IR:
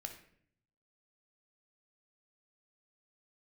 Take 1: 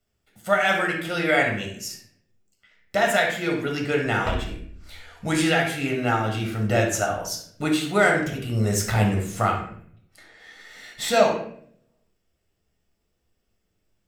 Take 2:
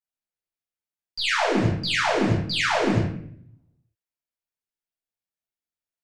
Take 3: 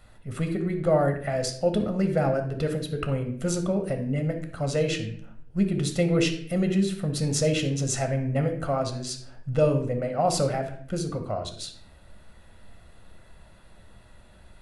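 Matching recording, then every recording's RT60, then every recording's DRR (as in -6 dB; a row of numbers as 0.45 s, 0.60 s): 3; 0.60 s, 0.60 s, 0.60 s; -0.5 dB, -8.5 dB, 4.5 dB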